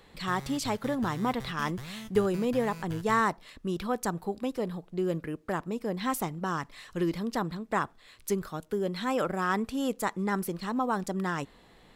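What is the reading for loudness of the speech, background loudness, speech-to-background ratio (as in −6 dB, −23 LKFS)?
−31.5 LKFS, −44.0 LKFS, 12.5 dB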